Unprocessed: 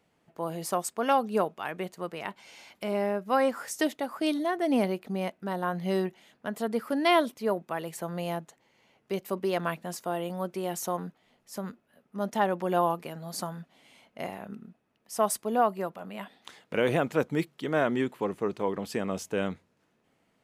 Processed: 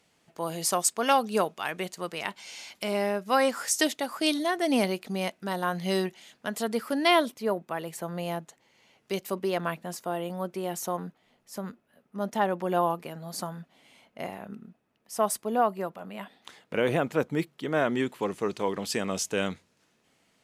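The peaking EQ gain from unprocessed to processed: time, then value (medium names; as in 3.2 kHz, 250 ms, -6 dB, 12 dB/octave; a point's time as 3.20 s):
peaking EQ 6.3 kHz 2.7 oct
6.54 s +11.5 dB
7.55 s +1 dB
8.21 s +1 dB
9.13 s +9.5 dB
9.59 s 0 dB
17.64 s 0 dB
18.38 s +11 dB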